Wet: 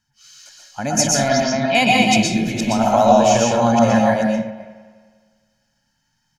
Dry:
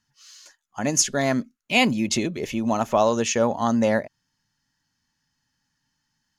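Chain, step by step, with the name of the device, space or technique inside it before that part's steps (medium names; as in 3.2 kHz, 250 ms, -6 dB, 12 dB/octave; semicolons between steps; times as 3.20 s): chunks repeated in reverse 237 ms, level -2 dB; 1.28–1.75 s: steep low-pass 5.6 kHz 48 dB/octave; microphone above a desk (comb 1.3 ms, depth 54%; reverberation RT60 0.45 s, pre-delay 114 ms, DRR -0.5 dB); spring tank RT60 1.7 s, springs 39/51 ms, chirp 65 ms, DRR 12.5 dB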